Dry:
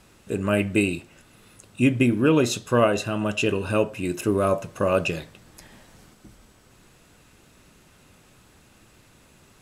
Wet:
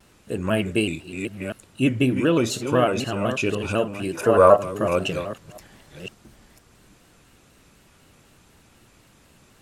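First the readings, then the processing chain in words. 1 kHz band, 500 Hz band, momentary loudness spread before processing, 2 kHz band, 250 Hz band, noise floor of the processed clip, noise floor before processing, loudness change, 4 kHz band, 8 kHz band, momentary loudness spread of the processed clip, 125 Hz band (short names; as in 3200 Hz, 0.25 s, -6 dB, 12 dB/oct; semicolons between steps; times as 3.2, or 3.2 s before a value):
+5.0 dB, +3.0 dB, 8 LU, -0.5 dB, -0.5 dB, -56 dBFS, -56 dBFS, +1.0 dB, +1.5 dB, -0.5 dB, 18 LU, -0.5 dB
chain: reverse delay 0.507 s, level -8 dB; spectral gain 4.15–4.57, 420–2000 Hz +11 dB; shaped vibrato square 4 Hz, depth 100 cents; gain -1 dB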